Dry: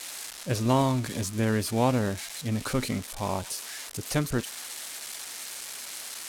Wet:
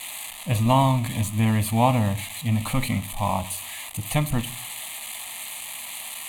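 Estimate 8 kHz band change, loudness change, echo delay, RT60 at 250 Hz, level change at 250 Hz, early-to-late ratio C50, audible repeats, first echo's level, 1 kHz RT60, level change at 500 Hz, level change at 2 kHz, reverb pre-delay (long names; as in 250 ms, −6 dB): +2.5 dB, +4.5 dB, no echo audible, 0.60 s, +3.0 dB, 18.0 dB, no echo audible, no echo audible, 0.45 s, +0.5 dB, +3.5 dB, 5 ms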